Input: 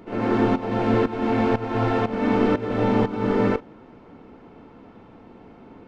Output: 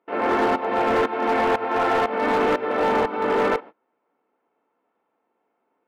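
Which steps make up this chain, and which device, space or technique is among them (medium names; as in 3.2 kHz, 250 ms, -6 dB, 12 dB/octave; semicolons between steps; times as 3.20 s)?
walkie-talkie (band-pass 540–2500 Hz; hard clipper -23 dBFS, distortion -14 dB; gate -43 dBFS, range -28 dB); trim +7.5 dB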